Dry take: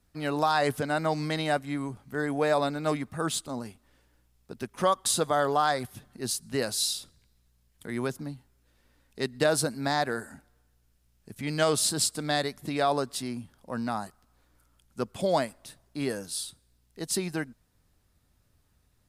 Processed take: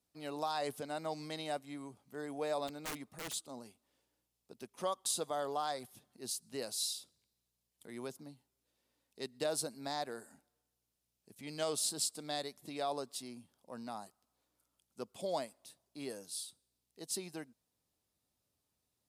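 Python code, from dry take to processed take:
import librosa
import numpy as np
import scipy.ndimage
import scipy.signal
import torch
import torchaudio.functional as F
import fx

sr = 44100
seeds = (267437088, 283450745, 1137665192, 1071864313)

y = fx.highpass(x, sr, hz=440.0, slope=6)
y = fx.peak_eq(y, sr, hz=1600.0, db=-9.5, octaves=1.1)
y = fx.overflow_wrap(y, sr, gain_db=28.0, at=(2.67, 3.32), fade=0.02)
y = y * 10.0 ** (-8.0 / 20.0)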